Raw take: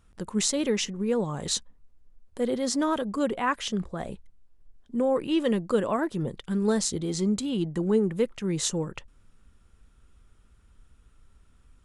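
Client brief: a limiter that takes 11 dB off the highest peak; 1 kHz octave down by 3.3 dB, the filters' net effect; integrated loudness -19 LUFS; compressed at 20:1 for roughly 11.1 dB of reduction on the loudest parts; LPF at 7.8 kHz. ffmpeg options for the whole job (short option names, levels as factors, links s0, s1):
-af "lowpass=7800,equalizer=f=1000:t=o:g=-4,acompressor=threshold=0.0316:ratio=20,volume=8.41,alimiter=limit=0.316:level=0:latency=1"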